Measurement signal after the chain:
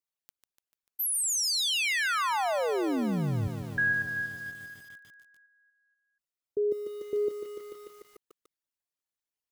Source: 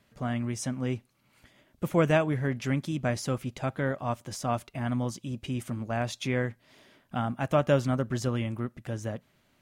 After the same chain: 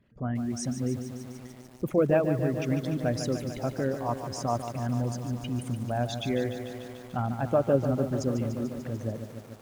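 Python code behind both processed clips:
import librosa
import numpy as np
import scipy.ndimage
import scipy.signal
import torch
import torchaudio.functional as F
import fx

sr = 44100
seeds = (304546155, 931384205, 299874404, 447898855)

y = fx.envelope_sharpen(x, sr, power=2.0)
y = fx.echo_crushed(y, sr, ms=147, feedback_pct=80, bits=8, wet_db=-9)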